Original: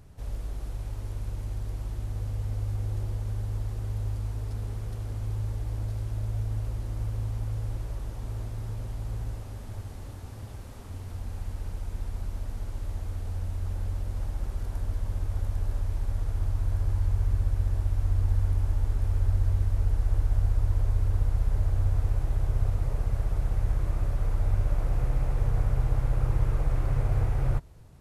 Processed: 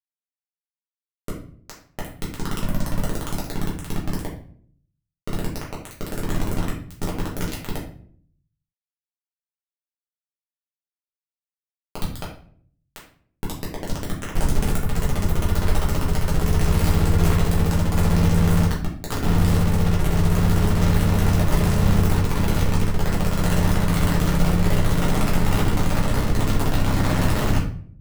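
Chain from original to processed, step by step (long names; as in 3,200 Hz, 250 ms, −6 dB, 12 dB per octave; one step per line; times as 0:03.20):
0:14.35–0:14.76: comb filter 1.3 ms, depth 55%
0:18.65–0:19.24: high-pass filter 65 Hz 24 dB per octave
brickwall limiter −21 dBFS, peak gain reduction 8 dB
bit reduction 4 bits
rectangular room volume 60 cubic metres, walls mixed, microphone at 1.2 metres
level −1.5 dB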